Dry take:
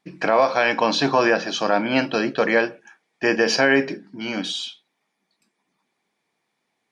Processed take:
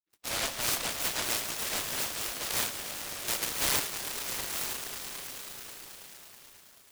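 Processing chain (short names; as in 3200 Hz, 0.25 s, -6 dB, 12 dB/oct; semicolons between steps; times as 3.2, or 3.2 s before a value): spectral delay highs late, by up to 0.161 s; HPF 1300 Hz 12 dB/oct; gate -50 dBFS, range -20 dB; harmonic-percussive split harmonic +4 dB; swelling echo 0.108 s, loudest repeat 5, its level -13 dB; noise-modulated delay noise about 2300 Hz, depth 0.33 ms; gain -9 dB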